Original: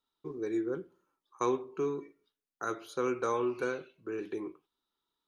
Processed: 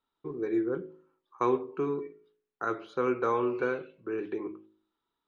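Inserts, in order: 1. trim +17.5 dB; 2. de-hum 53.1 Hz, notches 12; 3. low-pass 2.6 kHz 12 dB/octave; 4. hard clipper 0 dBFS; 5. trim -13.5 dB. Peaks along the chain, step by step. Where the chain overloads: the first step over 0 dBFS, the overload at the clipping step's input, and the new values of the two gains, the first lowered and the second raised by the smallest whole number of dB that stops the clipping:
-2.0 dBFS, -2.0 dBFS, -2.0 dBFS, -2.0 dBFS, -15.5 dBFS; nothing clips

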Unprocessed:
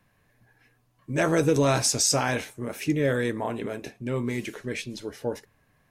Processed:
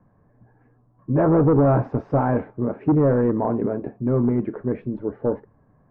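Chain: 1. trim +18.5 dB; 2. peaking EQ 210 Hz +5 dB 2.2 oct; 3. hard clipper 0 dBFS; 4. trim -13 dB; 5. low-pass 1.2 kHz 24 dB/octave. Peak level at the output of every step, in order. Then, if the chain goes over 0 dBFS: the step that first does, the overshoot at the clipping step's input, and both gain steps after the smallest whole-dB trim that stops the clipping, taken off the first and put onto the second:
+8.0 dBFS, +10.0 dBFS, 0.0 dBFS, -13.0 dBFS, -11.0 dBFS; step 1, 10.0 dB; step 1 +8.5 dB, step 4 -3 dB

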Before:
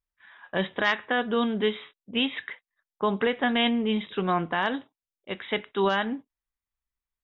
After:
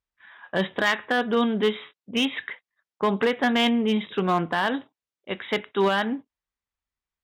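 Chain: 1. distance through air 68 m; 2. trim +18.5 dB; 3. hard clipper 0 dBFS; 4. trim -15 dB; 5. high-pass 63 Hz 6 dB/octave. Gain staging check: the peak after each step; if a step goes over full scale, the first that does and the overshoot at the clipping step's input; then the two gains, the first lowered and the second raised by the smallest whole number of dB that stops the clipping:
-12.5 dBFS, +6.0 dBFS, 0.0 dBFS, -15.0 dBFS, -13.5 dBFS; step 2, 6.0 dB; step 2 +12.5 dB, step 4 -9 dB

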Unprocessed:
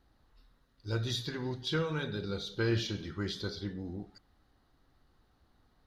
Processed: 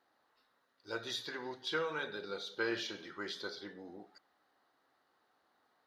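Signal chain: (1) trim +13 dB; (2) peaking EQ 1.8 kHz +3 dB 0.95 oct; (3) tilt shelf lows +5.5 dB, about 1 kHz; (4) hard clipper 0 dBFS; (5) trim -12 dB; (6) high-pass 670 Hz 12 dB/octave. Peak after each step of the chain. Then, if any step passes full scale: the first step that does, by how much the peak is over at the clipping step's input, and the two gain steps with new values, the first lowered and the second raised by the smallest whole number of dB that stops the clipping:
-6.5 dBFS, -6.0 dBFS, -2.5 dBFS, -2.5 dBFS, -14.5 dBFS, -22.0 dBFS; nothing clips

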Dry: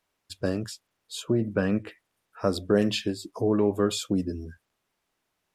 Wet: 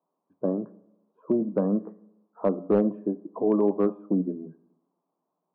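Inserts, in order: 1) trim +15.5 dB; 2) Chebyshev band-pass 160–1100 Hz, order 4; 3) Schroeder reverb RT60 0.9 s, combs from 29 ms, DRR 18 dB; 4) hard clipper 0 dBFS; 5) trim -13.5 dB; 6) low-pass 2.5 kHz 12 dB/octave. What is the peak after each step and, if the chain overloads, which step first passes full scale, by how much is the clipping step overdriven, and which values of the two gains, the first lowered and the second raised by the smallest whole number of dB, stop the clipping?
+5.0 dBFS, +4.0 dBFS, +4.5 dBFS, 0.0 dBFS, -13.5 dBFS, -13.5 dBFS; step 1, 4.5 dB; step 1 +10.5 dB, step 5 -8.5 dB

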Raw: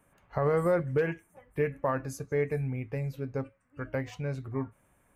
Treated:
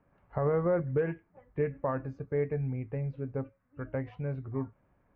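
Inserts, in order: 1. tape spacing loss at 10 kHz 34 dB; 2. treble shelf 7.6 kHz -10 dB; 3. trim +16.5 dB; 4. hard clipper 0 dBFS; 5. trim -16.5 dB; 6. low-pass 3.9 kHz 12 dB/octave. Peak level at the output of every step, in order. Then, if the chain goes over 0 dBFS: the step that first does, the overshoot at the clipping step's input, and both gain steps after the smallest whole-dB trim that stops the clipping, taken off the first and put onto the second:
-19.0 dBFS, -19.0 dBFS, -2.5 dBFS, -2.5 dBFS, -19.0 dBFS, -19.0 dBFS; nothing clips

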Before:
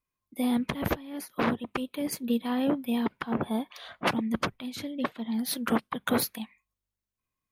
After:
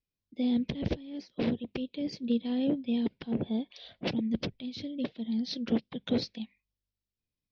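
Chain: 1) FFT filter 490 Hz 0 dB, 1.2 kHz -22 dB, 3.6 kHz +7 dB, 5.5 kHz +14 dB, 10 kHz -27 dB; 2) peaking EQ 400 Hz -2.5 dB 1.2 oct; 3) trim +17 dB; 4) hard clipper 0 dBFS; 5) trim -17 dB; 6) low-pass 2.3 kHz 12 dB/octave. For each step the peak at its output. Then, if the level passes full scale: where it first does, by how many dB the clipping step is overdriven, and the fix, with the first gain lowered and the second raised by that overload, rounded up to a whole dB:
-11.0 dBFS, -11.0 dBFS, +6.0 dBFS, 0.0 dBFS, -17.0 dBFS, -17.0 dBFS; step 3, 6.0 dB; step 3 +11 dB, step 5 -11 dB

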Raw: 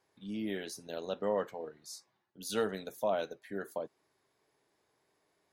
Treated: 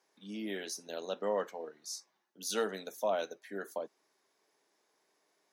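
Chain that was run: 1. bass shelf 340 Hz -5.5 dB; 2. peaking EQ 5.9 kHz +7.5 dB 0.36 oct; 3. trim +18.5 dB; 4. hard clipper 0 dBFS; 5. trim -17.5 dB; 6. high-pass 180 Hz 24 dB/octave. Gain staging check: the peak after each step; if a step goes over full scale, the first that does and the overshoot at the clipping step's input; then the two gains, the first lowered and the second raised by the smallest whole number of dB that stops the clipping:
-21.5 dBFS, -21.5 dBFS, -3.0 dBFS, -3.0 dBFS, -20.5 dBFS, -20.0 dBFS; nothing clips

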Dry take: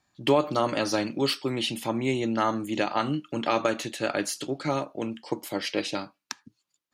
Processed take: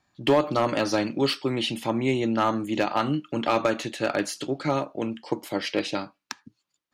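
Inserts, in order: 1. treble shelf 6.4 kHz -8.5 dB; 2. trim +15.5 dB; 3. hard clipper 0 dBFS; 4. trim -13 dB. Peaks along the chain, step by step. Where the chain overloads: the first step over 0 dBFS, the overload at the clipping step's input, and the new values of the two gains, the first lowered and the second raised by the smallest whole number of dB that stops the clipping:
-10.0 dBFS, +5.5 dBFS, 0.0 dBFS, -13.0 dBFS; step 2, 5.5 dB; step 2 +9.5 dB, step 4 -7 dB

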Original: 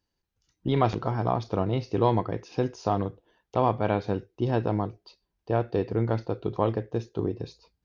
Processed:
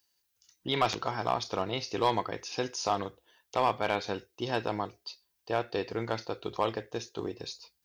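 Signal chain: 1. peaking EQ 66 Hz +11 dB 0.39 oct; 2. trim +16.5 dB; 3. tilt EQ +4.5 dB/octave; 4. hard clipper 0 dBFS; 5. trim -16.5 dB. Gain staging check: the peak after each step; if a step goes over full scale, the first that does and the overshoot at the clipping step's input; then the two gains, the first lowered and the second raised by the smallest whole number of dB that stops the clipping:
-8.5 dBFS, +8.0 dBFS, +5.5 dBFS, 0.0 dBFS, -16.5 dBFS; step 2, 5.5 dB; step 2 +10.5 dB, step 5 -10.5 dB

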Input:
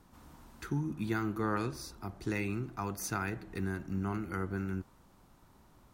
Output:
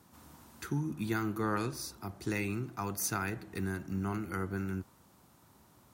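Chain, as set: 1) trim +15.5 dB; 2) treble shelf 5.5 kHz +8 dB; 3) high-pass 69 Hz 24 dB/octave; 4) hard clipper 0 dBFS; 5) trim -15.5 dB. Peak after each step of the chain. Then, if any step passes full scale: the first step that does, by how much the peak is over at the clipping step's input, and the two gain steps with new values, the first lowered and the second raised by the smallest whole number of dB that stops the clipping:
-5.0 dBFS, -4.5 dBFS, -4.5 dBFS, -4.5 dBFS, -20.0 dBFS; nothing clips

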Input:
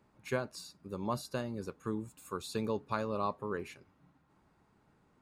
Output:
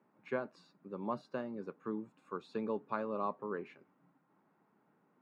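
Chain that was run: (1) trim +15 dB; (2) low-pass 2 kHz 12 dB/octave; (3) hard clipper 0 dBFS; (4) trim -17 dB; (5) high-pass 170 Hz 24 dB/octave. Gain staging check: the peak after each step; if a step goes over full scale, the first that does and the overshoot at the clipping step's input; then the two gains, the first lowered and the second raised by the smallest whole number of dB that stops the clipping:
-3.5 dBFS, -4.0 dBFS, -4.0 dBFS, -21.0 dBFS, -21.5 dBFS; nothing clips

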